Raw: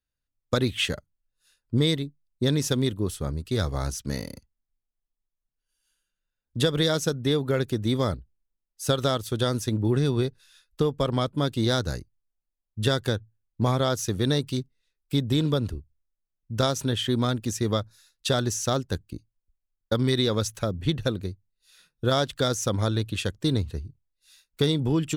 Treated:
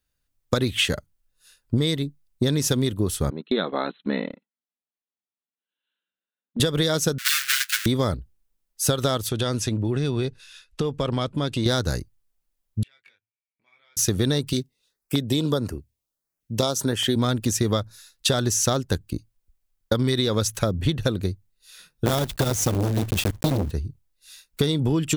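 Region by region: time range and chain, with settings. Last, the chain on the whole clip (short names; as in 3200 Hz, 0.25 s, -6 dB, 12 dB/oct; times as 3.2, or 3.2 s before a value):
3.3–6.6 brick-wall FIR band-pass 170–4200 Hz + gate -41 dBFS, range -13 dB
7.18–7.86 half-waves squared off + elliptic high-pass 1500 Hz, stop band 50 dB + comb 7.4 ms, depth 97%
9.29–11.66 LPF 8500 Hz + bell 2600 Hz +5.5 dB 0.44 oct + compressor 2.5:1, threshold -32 dBFS
12.83–13.97 compressor 20:1, threshold -37 dBFS + band-pass 2300 Hz, Q 17 + doubler 21 ms -3.5 dB
14.53–17.16 HPF 220 Hz 6 dB/oct + LFO notch saw up 1.6 Hz 890–4300 Hz
22.06–23.72 block floating point 3-bit + low shelf 180 Hz +12 dB + core saturation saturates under 680 Hz
whole clip: compressor, threshold -27 dBFS; high shelf 8600 Hz +4.5 dB; gain +8.5 dB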